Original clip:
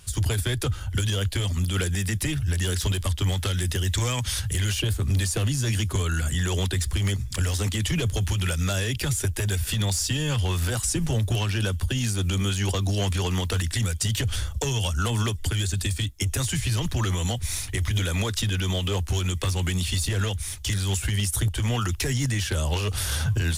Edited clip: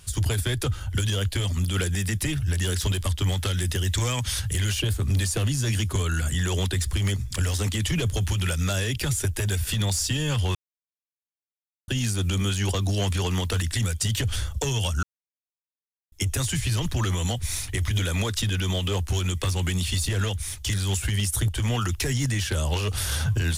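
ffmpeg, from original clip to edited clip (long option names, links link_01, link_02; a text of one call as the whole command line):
ffmpeg -i in.wav -filter_complex "[0:a]asplit=5[link_01][link_02][link_03][link_04][link_05];[link_01]atrim=end=10.55,asetpts=PTS-STARTPTS,afade=type=out:start_time=10.546:duration=0.004:curve=hsin[link_06];[link_02]atrim=start=10.55:end=11.88,asetpts=PTS-STARTPTS,volume=0[link_07];[link_03]atrim=start=11.88:end=15.03,asetpts=PTS-STARTPTS,afade=type=in:duration=0.004:curve=hsin,afade=type=out:start_time=3.146:duration=0.004:curve=hsin[link_08];[link_04]atrim=start=15.03:end=16.12,asetpts=PTS-STARTPTS,volume=0[link_09];[link_05]atrim=start=16.12,asetpts=PTS-STARTPTS,afade=type=in:duration=0.004:curve=hsin[link_10];[link_06][link_07][link_08][link_09][link_10]concat=n=5:v=0:a=1" out.wav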